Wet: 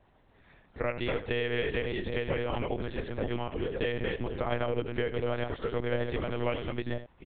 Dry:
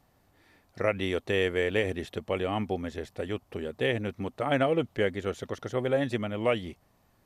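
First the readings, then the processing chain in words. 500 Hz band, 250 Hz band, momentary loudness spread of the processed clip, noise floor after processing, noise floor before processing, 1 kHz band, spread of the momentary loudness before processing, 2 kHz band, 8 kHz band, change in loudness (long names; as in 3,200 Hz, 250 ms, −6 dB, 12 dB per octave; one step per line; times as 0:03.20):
−3.0 dB, −3.0 dB, 4 LU, −64 dBFS, −67 dBFS, −3.0 dB, 9 LU, −2.5 dB, can't be measured, −3.0 dB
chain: delay that plays each chunk backwards 498 ms, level −4 dB
downward compressor 4 to 1, threshold −30 dBFS, peak gain reduction 9.5 dB
on a send: single-tap delay 79 ms −12 dB
on the sum: one-pitch LPC vocoder at 8 kHz 120 Hz
level +2 dB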